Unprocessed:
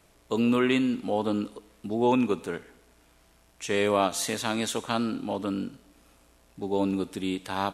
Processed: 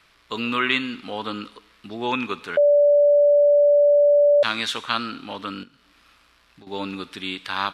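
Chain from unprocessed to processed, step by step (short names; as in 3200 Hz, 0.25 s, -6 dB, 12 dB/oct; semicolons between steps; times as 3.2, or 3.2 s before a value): band shelf 2300 Hz +14 dB 2.6 oct; 2.57–4.43 bleep 581 Hz -7 dBFS; 5.63–6.67 compressor 12:1, threshold -41 dBFS, peak gain reduction 14.5 dB; gain -5 dB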